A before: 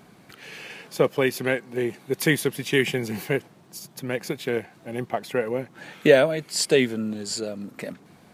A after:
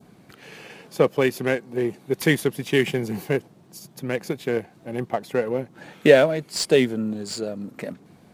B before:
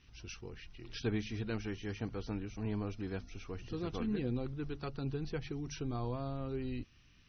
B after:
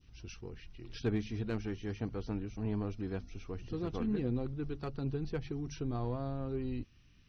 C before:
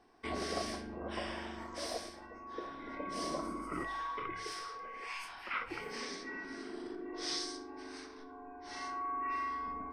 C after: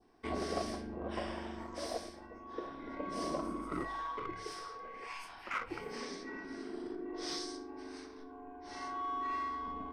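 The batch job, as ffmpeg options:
-filter_complex "[0:a]adynamicequalizer=threshold=0.00562:dfrequency=2000:dqfactor=1.1:tfrequency=2000:tqfactor=1.1:attack=5:release=100:ratio=0.375:range=2:mode=cutabove:tftype=bell,asplit=2[a][b];[b]adynamicsmooth=sensitivity=6.5:basefreq=620,volume=-2dB[c];[a][c]amix=inputs=2:normalize=0,volume=-3dB"

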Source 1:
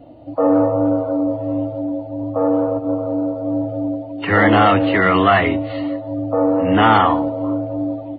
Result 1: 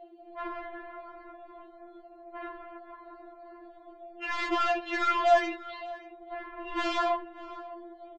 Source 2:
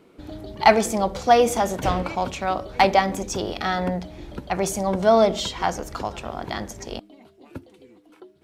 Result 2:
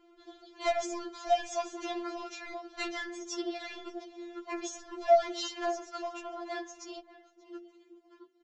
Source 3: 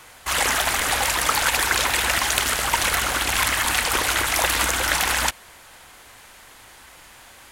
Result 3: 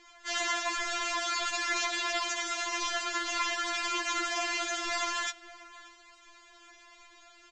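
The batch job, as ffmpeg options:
-filter_complex "[0:a]aresample=16000,asoftclip=type=tanh:threshold=-14dB,aresample=44100,asplit=2[a][b];[b]adelay=583.1,volume=-17dB,highshelf=f=4k:g=-13.1[c];[a][c]amix=inputs=2:normalize=0,afftfilt=real='re*4*eq(mod(b,16),0)':imag='im*4*eq(mod(b,16),0)':win_size=2048:overlap=0.75,volume=-6dB"

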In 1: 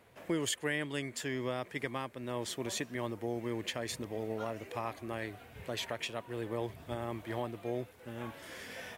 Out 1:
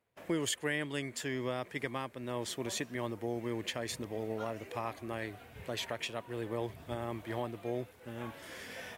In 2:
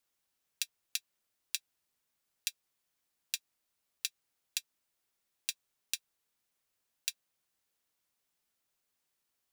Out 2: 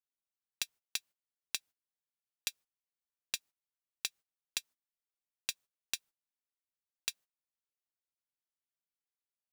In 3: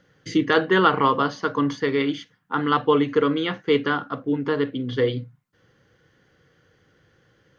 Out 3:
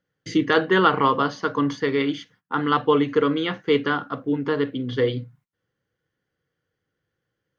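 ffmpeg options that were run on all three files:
-af "agate=range=-19dB:threshold=-55dB:ratio=16:detection=peak"

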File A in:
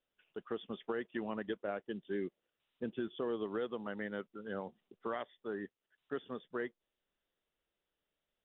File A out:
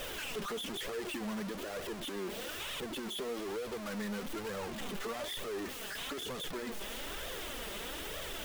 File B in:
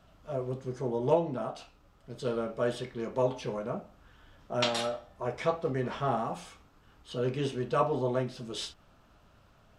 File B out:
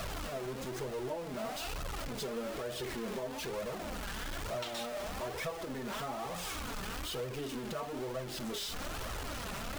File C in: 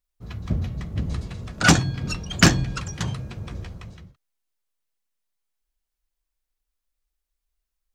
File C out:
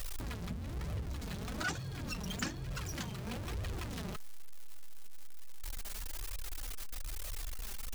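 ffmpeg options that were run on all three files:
-af "aeval=exprs='val(0)+0.5*0.0596*sgn(val(0))':c=same,acompressor=threshold=-28dB:ratio=4,flanger=delay=1.5:depth=3.7:regen=23:speed=1.1:shape=triangular,volume=-5.5dB"

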